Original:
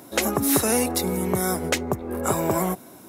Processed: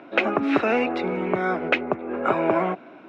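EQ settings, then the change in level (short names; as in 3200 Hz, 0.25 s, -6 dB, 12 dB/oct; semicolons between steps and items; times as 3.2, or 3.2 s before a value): speaker cabinet 220–3000 Hz, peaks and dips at 310 Hz +4 dB, 650 Hz +5 dB, 1400 Hz +7 dB, 2500 Hz +10 dB; 0.0 dB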